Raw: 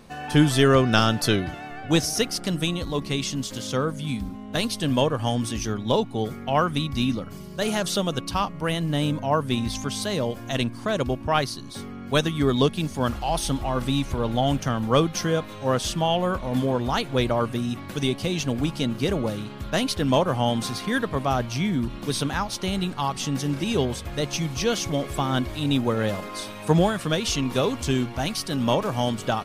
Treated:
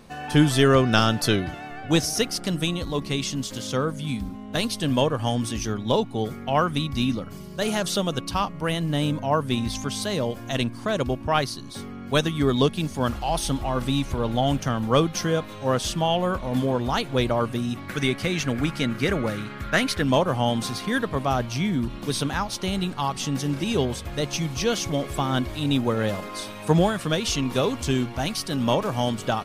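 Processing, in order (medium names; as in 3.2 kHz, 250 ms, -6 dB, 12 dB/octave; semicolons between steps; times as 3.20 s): 17.88–20.02 s: high-order bell 1.7 kHz +9 dB 1.1 oct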